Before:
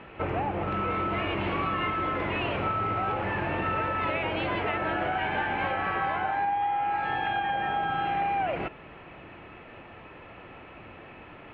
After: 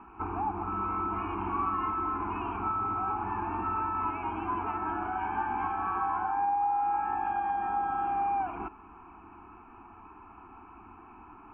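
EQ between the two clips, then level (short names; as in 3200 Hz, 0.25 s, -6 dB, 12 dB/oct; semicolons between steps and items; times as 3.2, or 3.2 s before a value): rippled Chebyshev low-pass 3300 Hz, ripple 6 dB; fixed phaser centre 530 Hz, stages 6; fixed phaser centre 1400 Hz, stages 4; +6.0 dB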